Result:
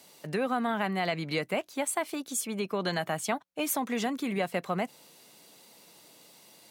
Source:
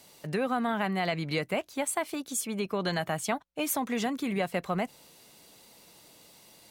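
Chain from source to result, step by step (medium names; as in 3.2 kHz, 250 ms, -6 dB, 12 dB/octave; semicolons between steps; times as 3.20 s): high-pass 150 Hz 12 dB/octave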